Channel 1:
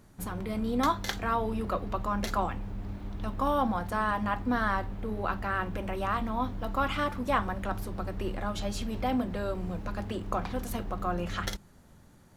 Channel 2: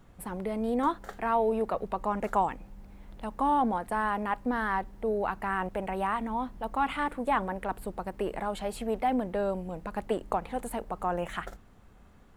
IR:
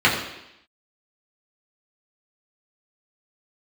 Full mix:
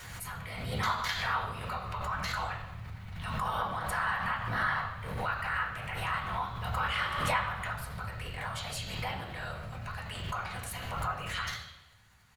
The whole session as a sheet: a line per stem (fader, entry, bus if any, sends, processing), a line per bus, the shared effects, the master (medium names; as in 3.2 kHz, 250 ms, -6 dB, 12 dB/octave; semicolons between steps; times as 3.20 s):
-5.0 dB, 0.00 s, send -10.5 dB, de-hum 193.8 Hz, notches 28; whisper effect
+1.5 dB, 3.6 ms, polarity flipped, no send, high-pass 1.2 kHz; compression, threshold -34 dBFS, peak gain reduction 8 dB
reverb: on, RT60 0.85 s, pre-delay 3 ms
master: amplifier tone stack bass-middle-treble 10-0-10; swell ahead of each attack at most 35 dB/s